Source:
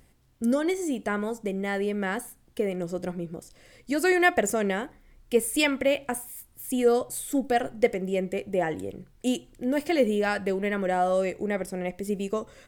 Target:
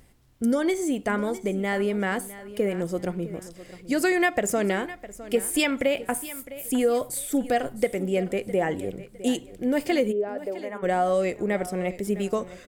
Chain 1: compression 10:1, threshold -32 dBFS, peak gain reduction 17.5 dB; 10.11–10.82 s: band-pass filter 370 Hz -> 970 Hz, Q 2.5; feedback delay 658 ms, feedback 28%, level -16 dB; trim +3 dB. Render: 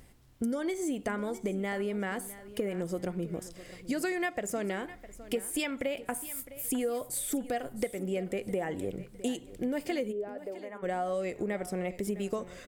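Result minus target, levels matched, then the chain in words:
compression: peak gain reduction +10 dB
compression 10:1, threshold -21 dBFS, peak gain reduction 7.5 dB; 10.11–10.82 s: band-pass filter 370 Hz -> 970 Hz, Q 2.5; feedback delay 658 ms, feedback 28%, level -16 dB; trim +3 dB

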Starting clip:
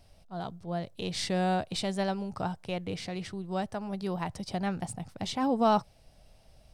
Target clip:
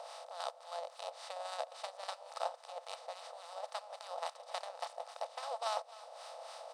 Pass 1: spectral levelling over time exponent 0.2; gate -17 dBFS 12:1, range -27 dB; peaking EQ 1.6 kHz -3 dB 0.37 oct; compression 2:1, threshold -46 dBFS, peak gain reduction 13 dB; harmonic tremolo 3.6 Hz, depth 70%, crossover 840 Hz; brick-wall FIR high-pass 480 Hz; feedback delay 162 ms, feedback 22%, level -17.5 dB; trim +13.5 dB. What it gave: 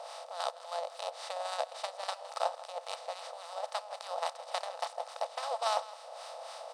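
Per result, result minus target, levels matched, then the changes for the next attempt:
echo 103 ms early; compression: peak gain reduction -6 dB
change: feedback delay 265 ms, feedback 22%, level -17.5 dB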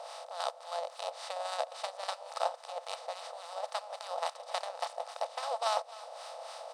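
compression: peak gain reduction -6 dB
change: compression 2:1, threshold -57.5 dBFS, peak gain reduction 18.5 dB

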